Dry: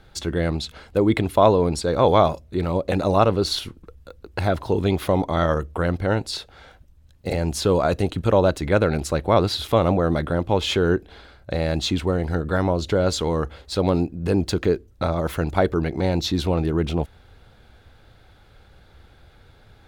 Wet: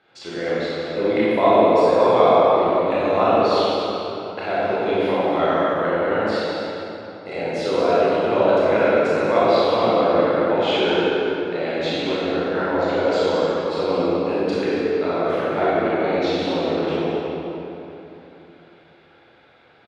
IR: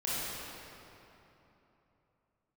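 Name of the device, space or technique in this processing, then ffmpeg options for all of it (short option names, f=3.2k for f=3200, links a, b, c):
station announcement: -filter_complex "[0:a]highpass=300,lowpass=3.7k,equalizer=f=2.4k:t=o:w=0.56:g=4.5,aecho=1:1:96.21|239.1:0.251|0.282[a];[1:a]atrim=start_sample=2205[b];[a][b]afir=irnorm=-1:irlink=0,volume=-4dB"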